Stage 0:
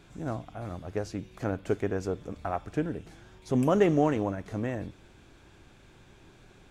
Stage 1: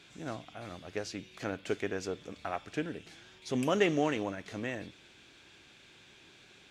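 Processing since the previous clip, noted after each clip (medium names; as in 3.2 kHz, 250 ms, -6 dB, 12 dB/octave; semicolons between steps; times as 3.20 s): frequency weighting D; trim -4.5 dB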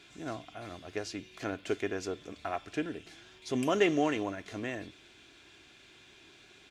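comb 2.9 ms, depth 34%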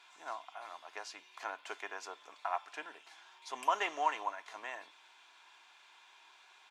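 resonant high-pass 930 Hz, resonance Q 5.7; trim -5.5 dB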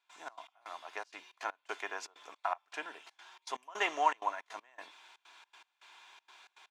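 trance gate ".xx.x..xxxx" 160 bpm -24 dB; trim +3.5 dB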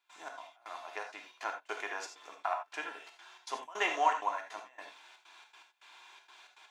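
reverberation, pre-delay 3 ms, DRR 3.5 dB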